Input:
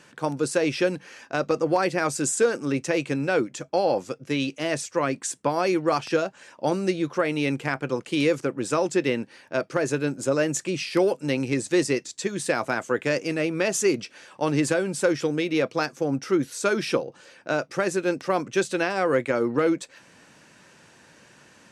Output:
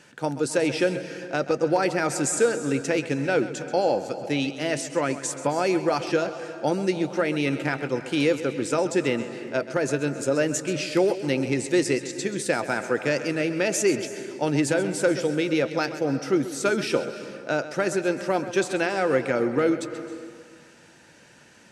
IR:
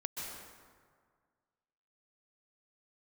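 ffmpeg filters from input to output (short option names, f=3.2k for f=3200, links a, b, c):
-filter_complex "[0:a]bandreject=f=1.1k:w=6.3,asplit=2[a][b];[1:a]atrim=start_sample=2205,adelay=132[c];[b][c]afir=irnorm=-1:irlink=0,volume=-11dB[d];[a][d]amix=inputs=2:normalize=0"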